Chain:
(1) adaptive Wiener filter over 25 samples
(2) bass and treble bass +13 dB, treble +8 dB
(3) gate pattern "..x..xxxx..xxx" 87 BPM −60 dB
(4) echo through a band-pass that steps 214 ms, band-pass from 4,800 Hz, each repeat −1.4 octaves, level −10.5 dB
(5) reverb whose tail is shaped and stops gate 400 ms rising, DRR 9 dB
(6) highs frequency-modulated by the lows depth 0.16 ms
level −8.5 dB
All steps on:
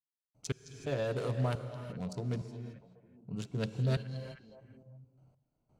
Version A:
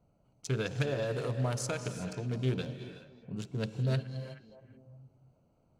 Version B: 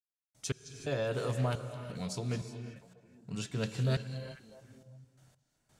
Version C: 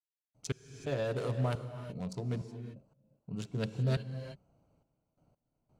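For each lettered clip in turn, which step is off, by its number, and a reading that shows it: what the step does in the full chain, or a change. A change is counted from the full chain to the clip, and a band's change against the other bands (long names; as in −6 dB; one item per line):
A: 3, 8 kHz band +5.5 dB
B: 1, 8 kHz band +5.5 dB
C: 4, change in momentary loudness spread −8 LU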